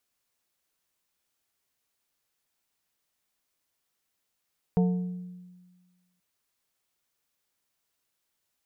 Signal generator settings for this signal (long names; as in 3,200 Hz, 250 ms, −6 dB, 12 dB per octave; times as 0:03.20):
struck glass plate, length 1.43 s, lowest mode 180 Hz, modes 4, decay 1.49 s, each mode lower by 7.5 dB, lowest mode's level −18.5 dB